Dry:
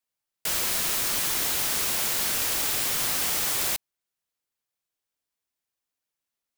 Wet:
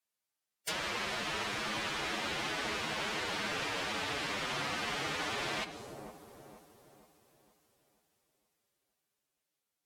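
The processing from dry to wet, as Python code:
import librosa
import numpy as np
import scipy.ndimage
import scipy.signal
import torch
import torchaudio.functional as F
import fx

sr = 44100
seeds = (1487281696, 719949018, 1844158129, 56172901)

p1 = fx.low_shelf(x, sr, hz=85.0, db=-11.0)
p2 = p1 + fx.echo_wet_lowpass(p1, sr, ms=315, feedback_pct=44, hz=640.0, wet_db=-4.5, dry=0)
p3 = fx.rev_double_slope(p2, sr, seeds[0], early_s=0.57, late_s=4.7, knee_db=-28, drr_db=10.5)
p4 = fx.stretch_vocoder(p3, sr, factor=1.5)
p5 = fx.env_lowpass_down(p4, sr, base_hz=2900.0, full_db=-24.5)
y = p5 * librosa.db_to_amplitude(-1.5)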